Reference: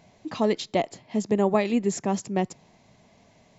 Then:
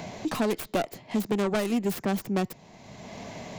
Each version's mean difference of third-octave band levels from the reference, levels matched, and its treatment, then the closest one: 10.0 dB: tracing distortion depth 0.47 ms; soft clip -19.5 dBFS, distortion -10 dB; three-band squash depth 70%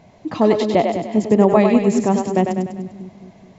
5.5 dB: high shelf 2300 Hz -9.5 dB; on a send: split-band echo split 340 Hz, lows 0.214 s, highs 99 ms, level -5 dB; on the sum: gain +8.5 dB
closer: second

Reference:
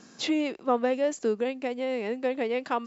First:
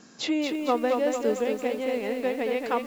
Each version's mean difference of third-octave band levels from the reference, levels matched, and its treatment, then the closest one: 6.5 dB: lo-fi delay 0.227 s, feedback 55%, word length 8-bit, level -4.5 dB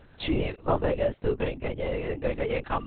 9.5 dB: LPC vocoder at 8 kHz whisper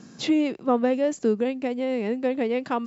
2.5 dB: bell 120 Hz +13 dB 2.3 oct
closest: third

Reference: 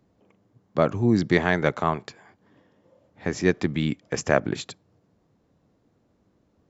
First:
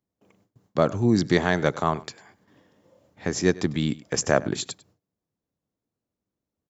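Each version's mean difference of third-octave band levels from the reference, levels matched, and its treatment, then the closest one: 2.0 dB: high shelf 4600 Hz +11 dB; on a send: echo 99 ms -20.5 dB; on the sum: gate with hold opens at -52 dBFS; dynamic EQ 2300 Hz, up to -6 dB, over -40 dBFS, Q 1.7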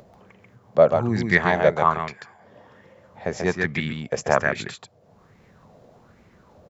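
5.0 dB: upward compressor, threshold -39 dBFS; bell 300 Hz -10.5 dB 0.32 oct; on a send: echo 0.138 s -4 dB; on the sum: LFO bell 1.2 Hz 570–2200 Hz +12 dB; gain -2.5 dB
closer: first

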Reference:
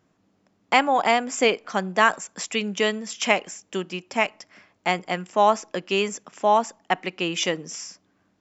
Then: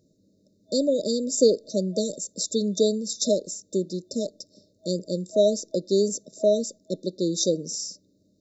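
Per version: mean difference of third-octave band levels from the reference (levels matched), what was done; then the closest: 11.0 dB: FFT band-reject 640–3600 Hz; dynamic EQ 2200 Hz, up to +5 dB, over -45 dBFS, Q 0.76; gain +3 dB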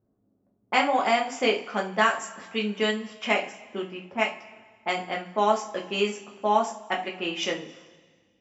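5.5 dB: low-pass opened by the level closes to 540 Hz, open at -18.5 dBFS; two-slope reverb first 0.29 s, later 1.7 s, from -20 dB, DRR -1.5 dB; gain -6.5 dB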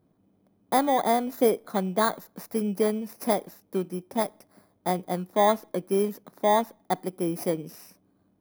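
8.0 dB: FFT order left unsorted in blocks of 16 samples; tilt shelf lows +7.5 dB, about 1300 Hz; gain -5.5 dB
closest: second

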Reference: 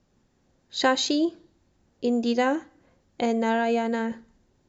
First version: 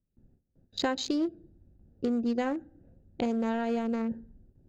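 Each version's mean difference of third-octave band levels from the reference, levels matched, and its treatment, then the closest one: 4.0 dB: Wiener smoothing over 41 samples; gate with hold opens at -58 dBFS; low shelf 180 Hz +11 dB; compressor 2.5:1, threshold -29 dBFS, peak gain reduction 9.5 dB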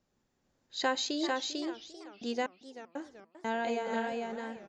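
8.0 dB: echo 0.447 s -3 dB; step gate "xxxxxxxx.x..x.xx" 61 bpm -60 dB; low shelf 340 Hz -6 dB; warbling echo 0.39 s, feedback 45%, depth 216 cents, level -14.5 dB; gain -7.5 dB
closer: first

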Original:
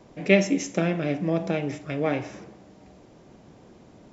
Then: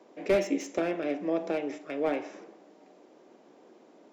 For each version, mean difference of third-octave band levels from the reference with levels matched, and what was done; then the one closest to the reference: 4.0 dB: HPF 300 Hz 24 dB/oct; tilt -1.5 dB/oct; slew limiter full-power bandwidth 99 Hz; gain -3.5 dB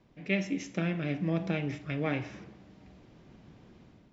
3.0 dB: LPF 3800 Hz 12 dB/oct; bell 590 Hz -9.5 dB 2.3 oct; AGC gain up to 8 dB; gain -7.5 dB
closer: second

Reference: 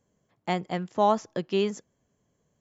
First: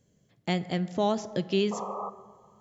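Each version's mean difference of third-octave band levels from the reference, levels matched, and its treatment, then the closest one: 5.0 dB: graphic EQ 125/1000/4000 Hz +5/-10/+4 dB; in parallel at +1 dB: compressor, threshold -35 dBFS, peak gain reduction 13.5 dB; on the sum: painted sound noise, 1.71–2.1, 400–1300 Hz -33 dBFS; plate-style reverb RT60 1.9 s, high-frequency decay 0.35×, DRR 13.5 dB; gain -2.5 dB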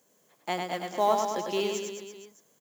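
11.0 dB: G.711 law mismatch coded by mu; HPF 300 Hz 12 dB/oct; high shelf 5900 Hz +10 dB; on a send: reverse bouncing-ball echo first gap 0.1 s, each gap 1.1×, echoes 5; on the sum: gain -3.5 dB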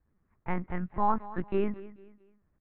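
7.5 dB: high shelf 2700 Hz -6.5 dB; fixed phaser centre 1400 Hz, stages 4; on a send: feedback echo 0.221 s, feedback 35%, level -17 dB; on the sum: LPC vocoder at 8 kHz pitch kept; gain +3 dB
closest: first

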